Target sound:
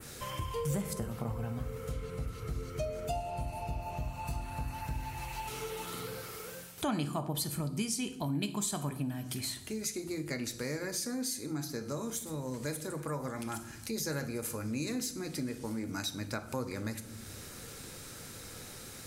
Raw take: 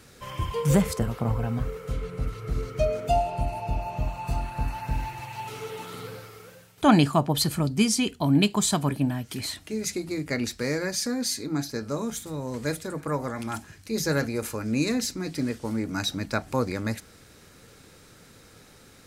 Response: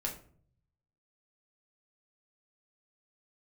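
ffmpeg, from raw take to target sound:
-filter_complex "[0:a]highshelf=f=6.3k:g=10,asplit=2[a][b];[1:a]atrim=start_sample=2205,asetrate=25137,aresample=44100[c];[b][c]afir=irnorm=-1:irlink=0,volume=-9.5dB[d];[a][d]amix=inputs=2:normalize=0,adynamicequalizer=threshold=0.0158:dfrequency=4800:dqfactor=0.78:tfrequency=4800:tqfactor=0.78:attack=5:release=100:ratio=0.375:range=2:mode=cutabove:tftype=bell,acompressor=threshold=-40dB:ratio=2.5"

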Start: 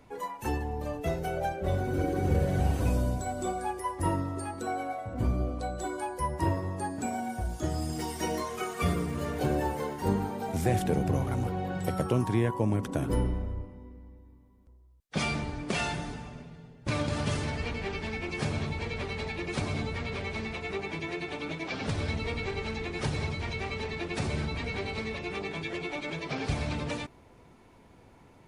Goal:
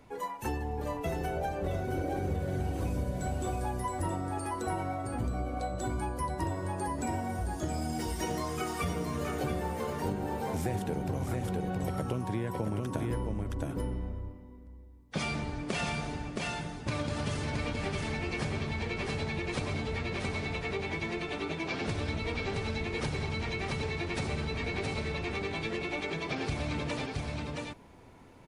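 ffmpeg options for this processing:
-af "aecho=1:1:669:0.631,acompressor=threshold=-29dB:ratio=6"

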